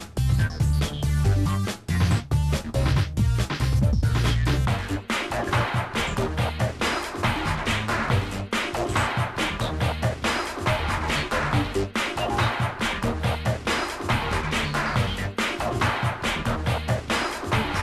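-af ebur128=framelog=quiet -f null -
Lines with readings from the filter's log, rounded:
Integrated loudness:
  I:         -24.8 LUFS
  Threshold: -34.8 LUFS
Loudness range:
  LRA:         1.7 LU
  Threshold: -44.8 LUFS
  LRA low:   -25.4 LUFS
  LRA high:  -23.7 LUFS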